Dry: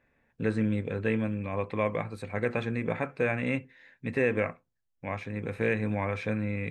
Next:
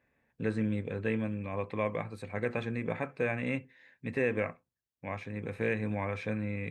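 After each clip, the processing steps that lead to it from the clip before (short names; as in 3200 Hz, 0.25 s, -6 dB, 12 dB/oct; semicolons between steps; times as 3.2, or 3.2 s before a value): HPF 48 Hz; notch 1400 Hz, Q 19; gain -3.5 dB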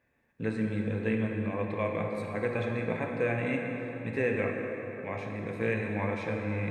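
plate-style reverb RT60 4.2 s, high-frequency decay 0.55×, DRR 1 dB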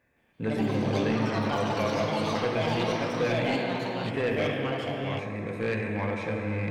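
soft clip -24 dBFS, distortion -16 dB; echoes that change speed 0.168 s, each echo +5 st, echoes 3; gain +3 dB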